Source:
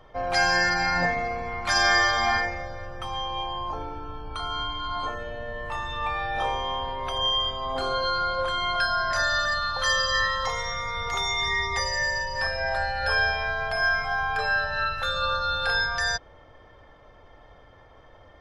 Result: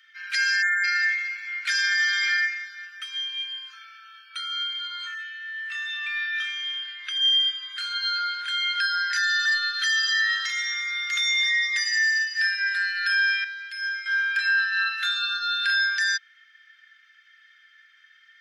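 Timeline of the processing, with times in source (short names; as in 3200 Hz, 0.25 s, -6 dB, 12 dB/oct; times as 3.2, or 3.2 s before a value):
0.62–0.84 spectral delete 2300–6600 Hz
5.22–7.2 LPF 8000 Hz
13.44–14.06 passive tone stack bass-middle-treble 5-5-5
whole clip: steep high-pass 1500 Hz 72 dB/oct; high shelf 4000 Hz -5.5 dB; limiter -22.5 dBFS; gain +7.5 dB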